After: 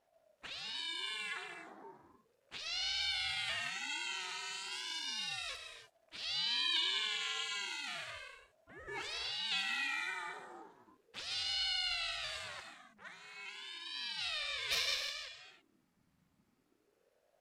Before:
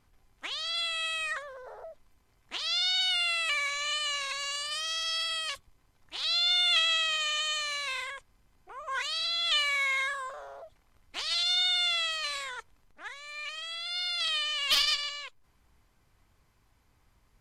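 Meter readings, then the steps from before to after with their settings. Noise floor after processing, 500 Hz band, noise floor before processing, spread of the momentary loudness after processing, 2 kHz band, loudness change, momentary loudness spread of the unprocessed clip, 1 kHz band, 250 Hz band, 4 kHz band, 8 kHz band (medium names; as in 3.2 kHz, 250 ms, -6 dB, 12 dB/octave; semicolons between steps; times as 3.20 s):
-77 dBFS, -9.0 dB, -68 dBFS, 18 LU, -8.0 dB, -9.0 dB, 18 LU, -9.5 dB, no reading, -9.5 dB, -8.5 dB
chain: gated-style reverb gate 350 ms flat, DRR 4 dB; ring modulator with a swept carrier 420 Hz, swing 60%, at 0.34 Hz; trim -7.5 dB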